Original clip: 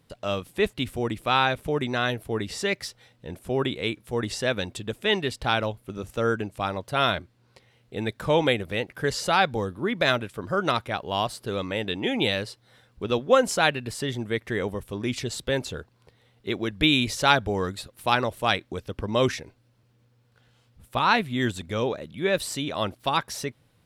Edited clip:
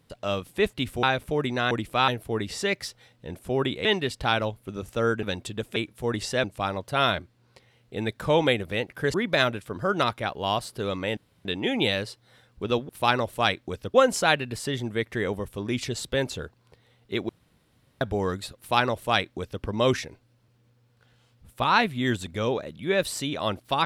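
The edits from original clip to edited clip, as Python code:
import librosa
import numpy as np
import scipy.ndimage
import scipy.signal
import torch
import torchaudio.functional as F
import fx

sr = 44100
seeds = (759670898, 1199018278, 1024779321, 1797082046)

y = fx.edit(x, sr, fx.move(start_s=1.03, length_s=0.37, to_s=2.08),
    fx.swap(start_s=3.85, length_s=0.68, other_s=5.06, other_length_s=1.38),
    fx.cut(start_s=9.14, length_s=0.68),
    fx.insert_room_tone(at_s=11.85, length_s=0.28),
    fx.room_tone_fill(start_s=16.64, length_s=0.72),
    fx.duplicate(start_s=17.93, length_s=1.05, to_s=13.29), tone=tone)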